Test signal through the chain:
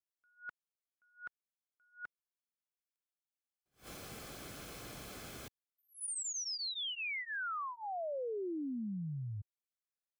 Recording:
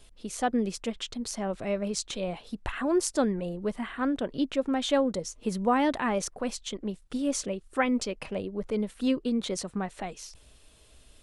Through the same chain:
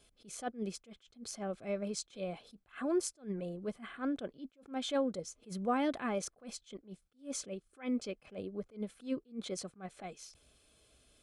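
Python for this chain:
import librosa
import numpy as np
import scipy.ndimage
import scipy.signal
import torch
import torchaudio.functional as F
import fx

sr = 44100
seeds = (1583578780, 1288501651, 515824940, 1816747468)

y = fx.notch_comb(x, sr, f0_hz=940.0)
y = fx.attack_slew(y, sr, db_per_s=230.0)
y = y * librosa.db_to_amplitude(-6.5)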